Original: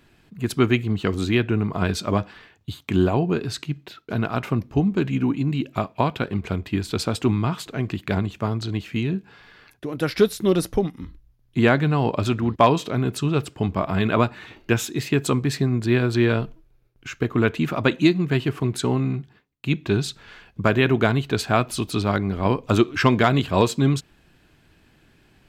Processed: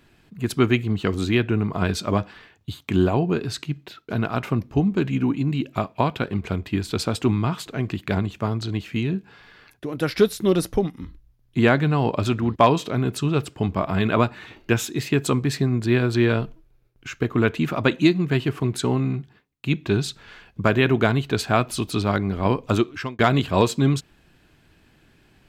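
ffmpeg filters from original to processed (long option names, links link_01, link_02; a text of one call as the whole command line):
ffmpeg -i in.wav -filter_complex "[0:a]asplit=2[link_01][link_02];[link_01]atrim=end=23.19,asetpts=PTS-STARTPTS,afade=type=out:start_time=22.65:duration=0.54[link_03];[link_02]atrim=start=23.19,asetpts=PTS-STARTPTS,afade=type=in:duration=0.004:curve=hsin[link_04];[link_03][link_04]concat=n=2:v=0:a=1" out.wav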